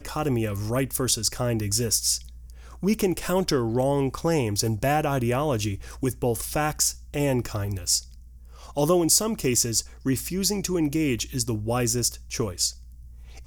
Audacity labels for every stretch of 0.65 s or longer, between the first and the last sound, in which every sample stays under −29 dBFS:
7.990000	8.770000	silence